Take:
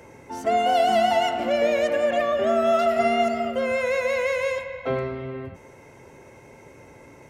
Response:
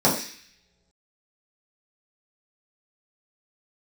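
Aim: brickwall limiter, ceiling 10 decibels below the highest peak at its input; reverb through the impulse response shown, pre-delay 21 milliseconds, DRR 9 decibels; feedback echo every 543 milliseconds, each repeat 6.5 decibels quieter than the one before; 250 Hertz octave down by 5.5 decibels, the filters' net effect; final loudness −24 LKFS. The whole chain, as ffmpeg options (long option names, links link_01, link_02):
-filter_complex "[0:a]equalizer=frequency=250:width_type=o:gain=-6.5,alimiter=limit=-20.5dB:level=0:latency=1,aecho=1:1:543|1086|1629|2172|2715|3258:0.473|0.222|0.105|0.0491|0.0231|0.0109,asplit=2[link_01][link_02];[1:a]atrim=start_sample=2205,adelay=21[link_03];[link_02][link_03]afir=irnorm=-1:irlink=0,volume=-27dB[link_04];[link_01][link_04]amix=inputs=2:normalize=0,volume=2dB"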